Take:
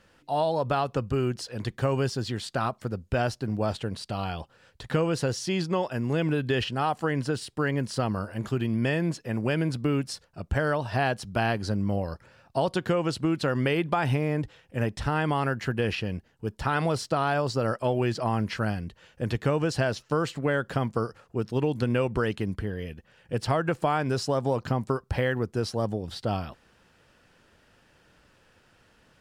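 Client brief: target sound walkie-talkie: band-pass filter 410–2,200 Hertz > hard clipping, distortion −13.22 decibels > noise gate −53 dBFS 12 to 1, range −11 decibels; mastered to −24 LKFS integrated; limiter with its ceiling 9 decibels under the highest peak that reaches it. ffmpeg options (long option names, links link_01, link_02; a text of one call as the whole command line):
ffmpeg -i in.wav -af "alimiter=limit=-19.5dB:level=0:latency=1,highpass=410,lowpass=2200,asoftclip=type=hard:threshold=-26.5dB,agate=range=-11dB:threshold=-53dB:ratio=12,volume=12dB" out.wav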